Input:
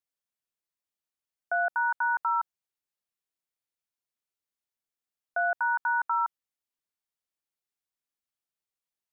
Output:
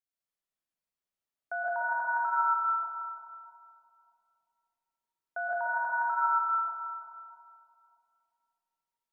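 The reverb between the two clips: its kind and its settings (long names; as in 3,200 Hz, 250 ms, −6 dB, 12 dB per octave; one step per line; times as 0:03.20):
comb and all-pass reverb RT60 2.8 s, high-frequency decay 0.3×, pre-delay 85 ms, DRR −6.5 dB
level −7.5 dB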